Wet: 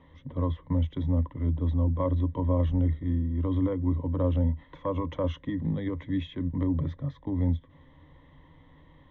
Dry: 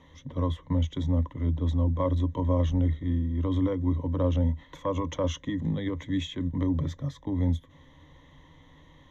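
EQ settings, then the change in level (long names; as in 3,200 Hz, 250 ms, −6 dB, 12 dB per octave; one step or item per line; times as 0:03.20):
high-frequency loss of the air 340 metres
0.0 dB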